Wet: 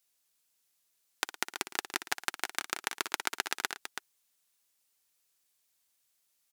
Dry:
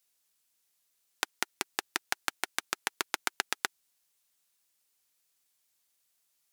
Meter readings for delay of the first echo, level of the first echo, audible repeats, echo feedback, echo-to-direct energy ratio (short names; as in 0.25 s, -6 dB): 59 ms, -12.5 dB, 3, no steady repeat, -6.5 dB